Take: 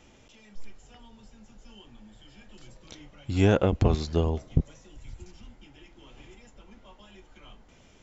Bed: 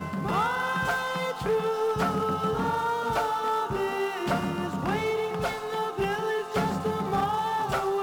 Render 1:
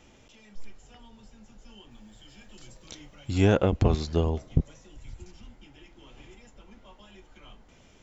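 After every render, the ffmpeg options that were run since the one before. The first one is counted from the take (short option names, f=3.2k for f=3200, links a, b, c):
-filter_complex "[0:a]asettb=1/sr,asplit=3[a][b][c];[a]atrim=end=1.914[d];[b]atrim=start=1.91:end=3.38,asetpts=PTS-STARTPTS,afade=t=in:d=0.004:c=qsin,afade=t=out:st=1.466:d=0.004:c=qsin,highshelf=f=5.7k:g=9.5[e];[c]atrim=start=3.376[f];[d][e]acrossfade=d=0.004:c1=hsin:c2=qsin[g];[g][f]acrossfade=d=0.004:c1=qsin:c2=hsin"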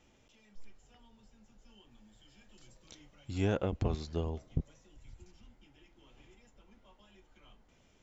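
-af "volume=-10dB"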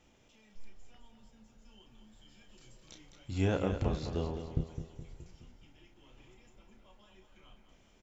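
-filter_complex "[0:a]asplit=2[a][b];[b]adelay=32,volume=-7.5dB[c];[a][c]amix=inputs=2:normalize=0,aecho=1:1:210|420|630|840|1050|1260:0.355|0.177|0.0887|0.0444|0.0222|0.0111"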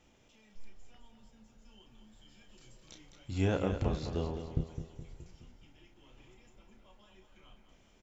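-af anull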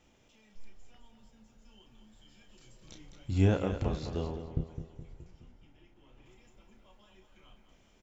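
-filter_complex "[0:a]asettb=1/sr,asplit=3[a][b][c];[a]atrim=end=2.814[d];[b]atrim=start=2.81:end=3.54,asetpts=PTS-STARTPTS,afade=t=in:d=0.004:c=qsin,afade=t=out:st=0.726:d=0.004:c=qsin,lowshelf=f=360:g=7[e];[c]atrim=start=3.536[f];[d][e]acrossfade=d=0.004:c1=hsin:c2=qsin[g];[g][f]acrossfade=d=0.004:c1=qsin:c2=hsin,asettb=1/sr,asplit=3[h][i][j];[h]atrim=end=4.364[k];[i]atrim=start=4.36:end=6.26,asetpts=PTS-STARTPTS,afade=t=in:d=0.004:c=qsin,afade=t=out:st=1.896:d=0.004:c=qsin,highshelf=f=3.1k:g=-9.5[l];[j]atrim=start=6.256[m];[k][l]acrossfade=d=0.004:c1=hsin:c2=qsin[n];[n][m]acrossfade=d=0.004:c1=qsin:c2=hsin"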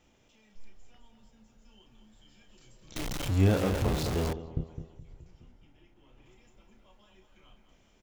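-filter_complex "[0:a]asettb=1/sr,asplit=3[a][b][c];[a]atrim=end=2.964[d];[b]atrim=start=2.96:end=4.33,asetpts=PTS-STARTPTS,afade=t=in:d=0.004:c=qsin,afade=t=out:st=1.366:d=0.004:c=qsin,aeval=exprs='val(0)+0.5*0.0376*sgn(val(0))':c=same[e];[c]atrim=start=4.326[f];[d][e]acrossfade=d=0.004:c1=hsin:c2=qsin[g];[g][f]acrossfade=d=0.004:c1=qsin:c2=hsin,asettb=1/sr,asplit=3[h][i][j];[h]atrim=end=4.944[k];[i]atrim=start=4.94:end=5.36,asetpts=PTS-STARTPTS,afade=t=in:d=0.004:c=qsin,afade=t=out:st=0.416:d=0.004:c=qsin,acrossover=split=150|3000[l][m][n];[m]acompressor=threshold=-56dB:ratio=6:attack=3.2:release=140:knee=2.83:detection=peak[o];[l][o][n]amix=inputs=3:normalize=0[p];[j]atrim=start=5.356[q];[k][p]acrossfade=d=0.004:c1=hsin:c2=qsin[r];[r][q]acrossfade=d=0.004:c1=qsin:c2=hsin"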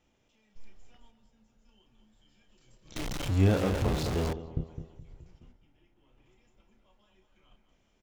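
-af "highshelf=f=10k:g=-6.5,agate=range=-6dB:threshold=-54dB:ratio=16:detection=peak"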